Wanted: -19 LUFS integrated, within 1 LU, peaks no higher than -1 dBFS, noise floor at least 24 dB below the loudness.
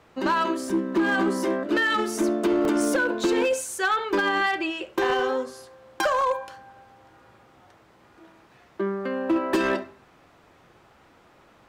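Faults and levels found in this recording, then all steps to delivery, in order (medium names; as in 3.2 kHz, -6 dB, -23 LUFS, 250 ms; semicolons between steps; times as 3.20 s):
clipped samples 1.2%; clipping level -17.0 dBFS; dropouts 3; longest dropout 1.7 ms; loudness -24.5 LUFS; peak level -17.0 dBFS; loudness target -19.0 LUFS
-> clip repair -17 dBFS; interpolate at 0.70/2.65/6.21 s, 1.7 ms; trim +5.5 dB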